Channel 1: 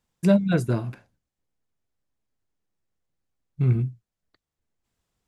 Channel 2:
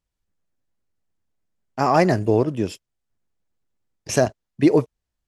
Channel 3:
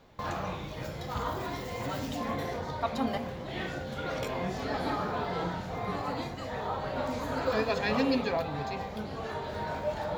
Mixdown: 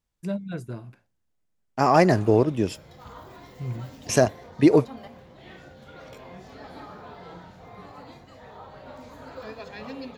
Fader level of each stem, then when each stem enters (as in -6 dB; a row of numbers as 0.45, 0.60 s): -11.5, -0.5, -10.5 dB; 0.00, 0.00, 1.90 s